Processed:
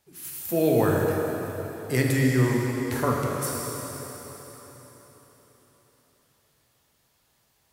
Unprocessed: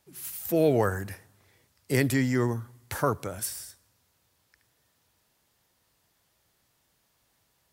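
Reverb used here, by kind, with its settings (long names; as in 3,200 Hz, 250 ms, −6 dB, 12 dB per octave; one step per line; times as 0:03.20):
dense smooth reverb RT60 4.2 s, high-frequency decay 0.95×, DRR −2 dB
level −1 dB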